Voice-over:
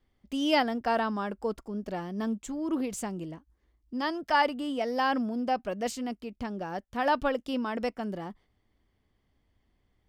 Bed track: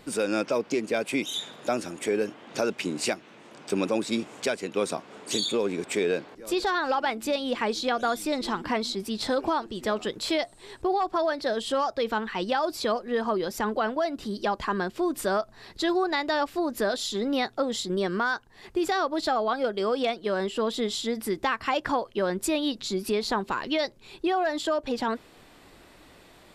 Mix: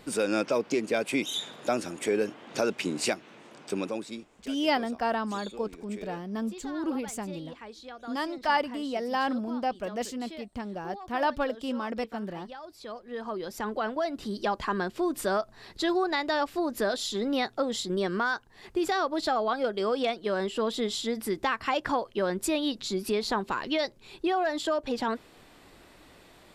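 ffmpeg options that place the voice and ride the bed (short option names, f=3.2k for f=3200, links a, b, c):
-filter_complex "[0:a]adelay=4150,volume=-1dB[a];[1:a]volume=15.5dB,afade=t=out:st=3.36:d=0.92:silence=0.141254,afade=t=in:st=12.76:d=1.48:silence=0.158489[b];[a][b]amix=inputs=2:normalize=0"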